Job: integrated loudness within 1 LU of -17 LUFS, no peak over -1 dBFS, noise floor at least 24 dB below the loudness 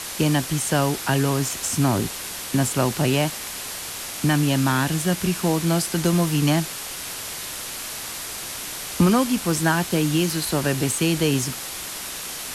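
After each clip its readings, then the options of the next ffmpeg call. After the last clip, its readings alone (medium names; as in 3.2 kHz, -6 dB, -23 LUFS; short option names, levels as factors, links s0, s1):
noise floor -33 dBFS; noise floor target -47 dBFS; loudness -23.0 LUFS; peak level -7.0 dBFS; loudness target -17.0 LUFS
-> -af "afftdn=nr=14:nf=-33"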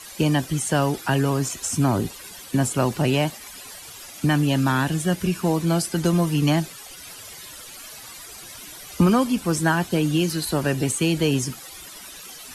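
noise floor -41 dBFS; noise floor target -47 dBFS
-> -af "afftdn=nr=6:nf=-41"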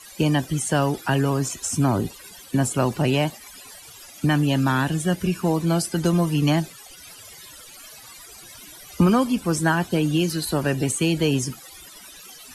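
noise floor -44 dBFS; noise floor target -47 dBFS
-> -af "afftdn=nr=6:nf=-44"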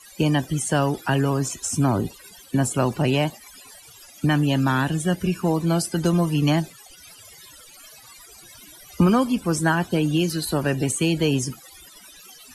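noise floor -47 dBFS; loudness -22.5 LUFS; peak level -7.5 dBFS; loudness target -17.0 LUFS
-> -af "volume=1.88"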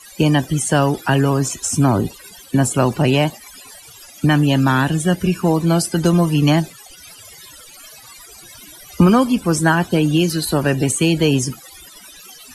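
loudness -17.0 LUFS; peak level -2.5 dBFS; noise floor -42 dBFS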